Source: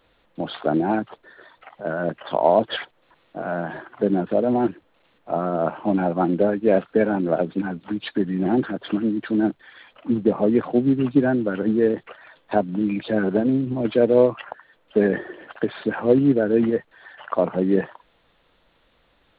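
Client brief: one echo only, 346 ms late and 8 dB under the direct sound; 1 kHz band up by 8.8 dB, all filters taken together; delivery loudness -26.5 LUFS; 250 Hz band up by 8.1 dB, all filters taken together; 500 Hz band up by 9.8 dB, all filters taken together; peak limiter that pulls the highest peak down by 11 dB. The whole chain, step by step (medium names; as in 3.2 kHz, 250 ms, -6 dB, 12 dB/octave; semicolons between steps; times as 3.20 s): peaking EQ 250 Hz +7 dB; peaking EQ 500 Hz +8 dB; peaking EQ 1 kHz +8 dB; peak limiter -4.5 dBFS; delay 346 ms -8 dB; trim -10.5 dB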